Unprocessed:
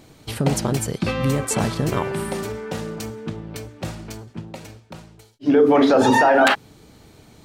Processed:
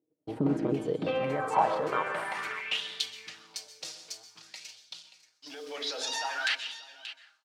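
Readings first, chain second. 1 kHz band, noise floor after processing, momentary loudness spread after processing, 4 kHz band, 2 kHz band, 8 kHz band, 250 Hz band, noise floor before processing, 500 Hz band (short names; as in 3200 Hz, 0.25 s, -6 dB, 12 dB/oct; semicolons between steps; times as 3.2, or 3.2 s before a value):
-9.5 dB, -74 dBFS, 17 LU, -2.5 dB, -9.5 dB, -11.5 dB, -14.0 dB, -51 dBFS, -13.5 dB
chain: G.711 law mismatch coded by A; gate -49 dBFS, range -28 dB; high shelf 4500 Hz +6 dB; comb 6.4 ms, depth 45%; dynamic EQ 2700 Hz, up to +5 dB, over -33 dBFS, Q 0.99; limiter -13.5 dBFS, peak gain reduction 14 dB; band-pass sweep 310 Hz -> 5000 Hz, 0.56–3.29; echo 0.581 s -15.5 dB; plate-style reverb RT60 0.57 s, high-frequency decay 0.7×, pre-delay 0.115 s, DRR 10.5 dB; LFO bell 0.51 Hz 450–3500 Hz +11 dB; gain +2 dB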